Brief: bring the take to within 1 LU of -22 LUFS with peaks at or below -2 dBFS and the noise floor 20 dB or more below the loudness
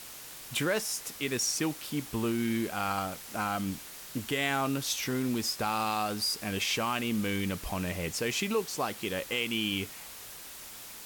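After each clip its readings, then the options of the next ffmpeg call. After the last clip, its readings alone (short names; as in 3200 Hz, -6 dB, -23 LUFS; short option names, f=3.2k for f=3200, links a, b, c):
noise floor -46 dBFS; noise floor target -52 dBFS; loudness -31.5 LUFS; peak -16.0 dBFS; loudness target -22.0 LUFS
-> -af "afftdn=nr=6:nf=-46"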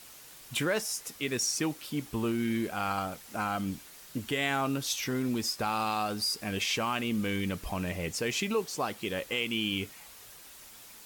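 noise floor -51 dBFS; noise floor target -52 dBFS
-> -af "afftdn=nr=6:nf=-51"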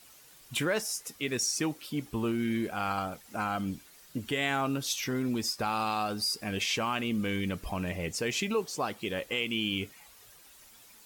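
noise floor -56 dBFS; loudness -31.5 LUFS; peak -16.5 dBFS; loudness target -22.0 LUFS
-> -af "volume=9.5dB"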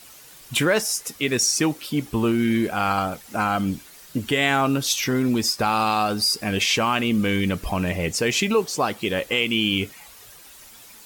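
loudness -22.0 LUFS; peak -7.0 dBFS; noise floor -46 dBFS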